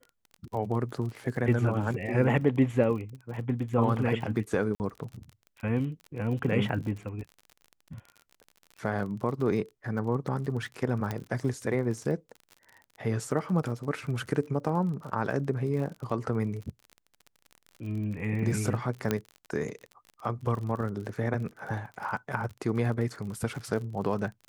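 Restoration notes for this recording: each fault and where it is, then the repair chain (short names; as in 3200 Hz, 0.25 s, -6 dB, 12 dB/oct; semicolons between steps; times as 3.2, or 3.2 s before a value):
crackle 39/s -37 dBFS
4.75–4.8 gap 49 ms
11.11 pop -18 dBFS
19.11 pop -12 dBFS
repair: de-click; interpolate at 4.75, 49 ms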